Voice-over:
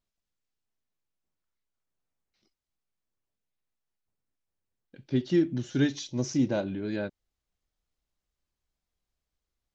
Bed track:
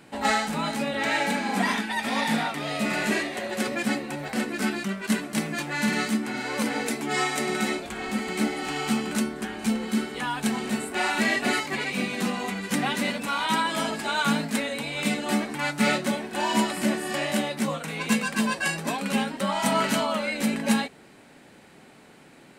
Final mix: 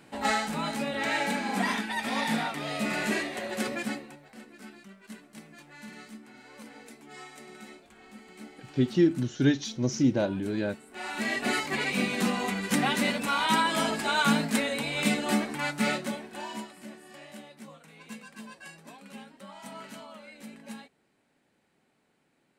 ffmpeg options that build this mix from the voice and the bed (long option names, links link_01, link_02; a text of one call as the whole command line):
ffmpeg -i stem1.wav -i stem2.wav -filter_complex "[0:a]adelay=3650,volume=2dB[link_01];[1:a]volume=17dB,afade=type=out:start_time=3.69:duration=0.51:silence=0.141254,afade=type=in:start_time=10.86:duration=1.01:silence=0.0944061,afade=type=out:start_time=15.09:duration=1.62:silence=0.1[link_02];[link_01][link_02]amix=inputs=2:normalize=0" out.wav